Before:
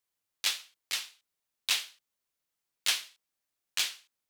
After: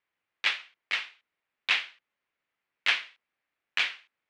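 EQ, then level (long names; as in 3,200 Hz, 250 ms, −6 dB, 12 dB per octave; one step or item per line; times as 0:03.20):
low-pass with resonance 2,200 Hz, resonance Q 1.8
low-shelf EQ 98 Hz −10 dB
+5.0 dB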